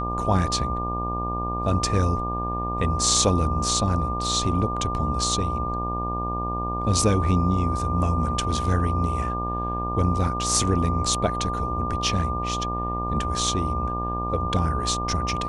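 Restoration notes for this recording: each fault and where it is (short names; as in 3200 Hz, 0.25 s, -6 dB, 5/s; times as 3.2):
buzz 60 Hz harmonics 21 -30 dBFS
tone 1200 Hz -28 dBFS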